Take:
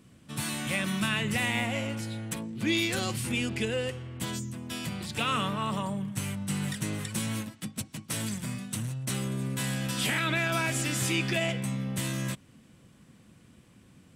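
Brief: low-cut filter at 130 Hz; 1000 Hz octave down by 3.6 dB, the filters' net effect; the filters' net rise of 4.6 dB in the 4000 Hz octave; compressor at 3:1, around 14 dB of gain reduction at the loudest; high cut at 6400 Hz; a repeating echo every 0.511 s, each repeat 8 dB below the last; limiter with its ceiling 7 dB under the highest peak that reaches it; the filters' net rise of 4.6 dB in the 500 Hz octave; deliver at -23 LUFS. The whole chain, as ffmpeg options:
-af "highpass=130,lowpass=6.4k,equalizer=f=500:t=o:g=8,equalizer=f=1k:t=o:g=-8,equalizer=f=4k:t=o:g=7,acompressor=threshold=-41dB:ratio=3,alimiter=level_in=8.5dB:limit=-24dB:level=0:latency=1,volume=-8.5dB,aecho=1:1:511|1022|1533|2044|2555:0.398|0.159|0.0637|0.0255|0.0102,volume=18.5dB"

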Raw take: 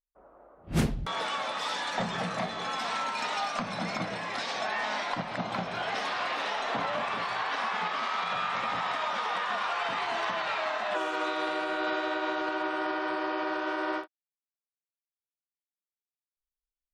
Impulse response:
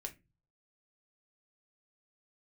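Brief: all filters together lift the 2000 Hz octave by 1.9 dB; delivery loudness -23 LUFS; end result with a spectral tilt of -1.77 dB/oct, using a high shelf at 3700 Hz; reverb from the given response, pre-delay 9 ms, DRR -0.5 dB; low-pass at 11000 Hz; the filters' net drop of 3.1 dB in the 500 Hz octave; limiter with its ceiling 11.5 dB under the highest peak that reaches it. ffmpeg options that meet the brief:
-filter_complex "[0:a]lowpass=11k,equalizer=f=500:t=o:g=-4.5,equalizer=f=2k:t=o:g=4.5,highshelf=f=3.7k:g=-7,alimiter=level_in=3dB:limit=-24dB:level=0:latency=1,volume=-3dB,asplit=2[a][b];[1:a]atrim=start_sample=2205,adelay=9[c];[b][c]afir=irnorm=-1:irlink=0,volume=3.5dB[d];[a][d]amix=inputs=2:normalize=0,volume=9dB"

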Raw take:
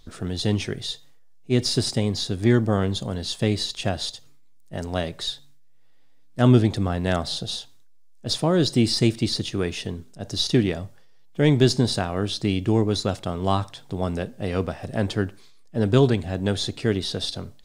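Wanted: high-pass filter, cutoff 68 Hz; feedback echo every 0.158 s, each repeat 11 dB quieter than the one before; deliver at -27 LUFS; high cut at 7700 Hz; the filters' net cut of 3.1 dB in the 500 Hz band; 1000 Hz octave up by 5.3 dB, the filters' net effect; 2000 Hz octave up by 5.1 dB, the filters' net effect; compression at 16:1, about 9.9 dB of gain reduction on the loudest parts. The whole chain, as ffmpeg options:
-af "highpass=68,lowpass=7.7k,equalizer=f=500:t=o:g=-6.5,equalizer=f=1k:t=o:g=8.5,equalizer=f=2k:t=o:g=4,acompressor=threshold=-21dB:ratio=16,aecho=1:1:158|316|474:0.282|0.0789|0.0221,volume=1dB"

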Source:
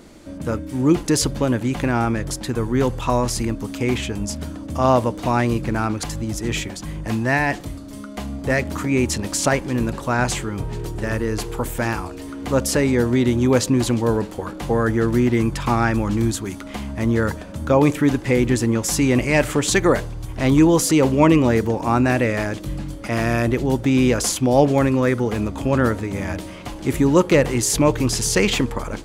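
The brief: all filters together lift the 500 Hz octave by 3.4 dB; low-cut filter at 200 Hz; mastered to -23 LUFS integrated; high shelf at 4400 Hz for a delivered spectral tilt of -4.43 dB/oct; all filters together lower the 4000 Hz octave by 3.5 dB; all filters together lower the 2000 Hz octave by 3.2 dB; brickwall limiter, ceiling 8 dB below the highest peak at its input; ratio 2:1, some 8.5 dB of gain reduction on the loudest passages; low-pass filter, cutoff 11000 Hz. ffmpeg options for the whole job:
-af "highpass=200,lowpass=11k,equalizer=f=500:t=o:g=4.5,equalizer=f=2k:t=o:g=-3.5,equalizer=f=4k:t=o:g=-9,highshelf=f=4.4k:g=7.5,acompressor=threshold=-24dB:ratio=2,volume=4.5dB,alimiter=limit=-12dB:level=0:latency=1"

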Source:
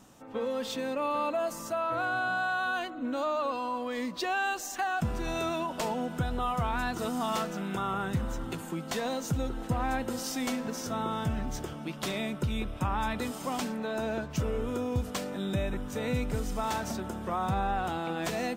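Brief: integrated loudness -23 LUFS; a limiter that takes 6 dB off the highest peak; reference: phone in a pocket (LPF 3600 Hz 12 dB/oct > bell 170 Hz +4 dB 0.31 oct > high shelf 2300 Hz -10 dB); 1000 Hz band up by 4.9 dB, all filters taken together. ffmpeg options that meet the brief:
-af "equalizer=f=1k:t=o:g=8.5,alimiter=limit=-20.5dB:level=0:latency=1,lowpass=3.6k,equalizer=f=170:t=o:w=0.31:g=4,highshelf=f=2.3k:g=-10,volume=8.5dB"

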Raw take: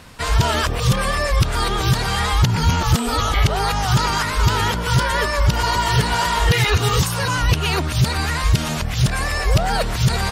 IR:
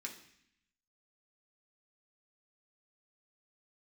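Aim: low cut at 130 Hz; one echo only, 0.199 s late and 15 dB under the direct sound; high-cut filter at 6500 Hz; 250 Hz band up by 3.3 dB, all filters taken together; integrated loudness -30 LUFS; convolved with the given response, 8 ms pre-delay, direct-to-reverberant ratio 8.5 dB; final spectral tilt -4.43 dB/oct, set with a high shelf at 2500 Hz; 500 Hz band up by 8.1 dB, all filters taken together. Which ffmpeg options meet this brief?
-filter_complex "[0:a]highpass=130,lowpass=6.5k,equalizer=f=250:t=o:g=4,equalizer=f=500:t=o:g=9,highshelf=f=2.5k:g=-5.5,aecho=1:1:199:0.178,asplit=2[a][b];[1:a]atrim=start_sample=2205,adelay=8[c];[b][c]afir=irnorm=-1:irlink=0,volume=-6.5dB[d];[a][d]amix=inputs=2:normalize=0,volume=-11.5dB"

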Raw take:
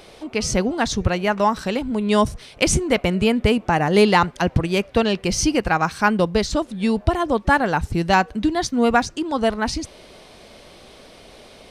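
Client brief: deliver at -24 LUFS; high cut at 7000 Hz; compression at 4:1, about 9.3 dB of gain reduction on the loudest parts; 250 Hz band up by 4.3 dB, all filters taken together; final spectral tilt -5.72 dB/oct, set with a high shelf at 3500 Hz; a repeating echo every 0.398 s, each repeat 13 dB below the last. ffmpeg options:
-af "lowpass=7k,equalizer=f=250:t=o:g=5.5,highshelf=f=3.5k:g=-8,acompressor=threshold=-20dB:ratio=4,aecho=1:1:398|796|1194:0.224|0.0493|0.0108,volume=0.5dB"

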